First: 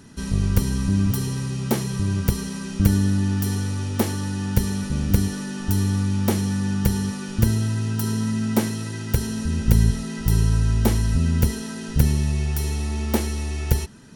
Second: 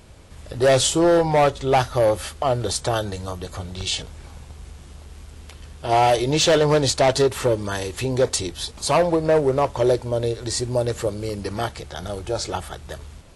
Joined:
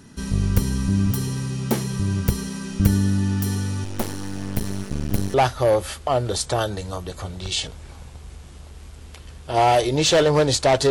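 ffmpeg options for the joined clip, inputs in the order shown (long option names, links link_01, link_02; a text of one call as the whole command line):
ffmpeg -i cue0.wav -i cue1.wav -filter_complex "[0:a]asettb=1/sr,asplit=3[link_01][link_02][link_03];[link_01]atrim=end=3.844[link_04];[link_02]atrim=start=3.84:end=5.34,asetpts=PTS-STARTPTS,afade=type=in:duration=0.004:curve=qsin,afade=type=out:start_time=1.496:duration=0.004:curve=qsin,aeval=exprs='max(val(0),0)':channel_layout=same[link_05];[link_03]atrim=start=5.336[link_06];[link_04][link_05]acrossfade=duration=0.004:curve1=hsin:curve2=qsin[link_07];[link_07][link_06]acrossfade=duration=0.004:curve1=qsin:curve2=hsin,apad=whole_dur=10.9,atrim=end=10.9,atrim=end=5.342[link_08];[1:a]atrim=start=1.688:end=7.25[link_09];[link_08][link_09]acrossfade=duration=0.004:curve1=hsin:curve2=hsin" out.wav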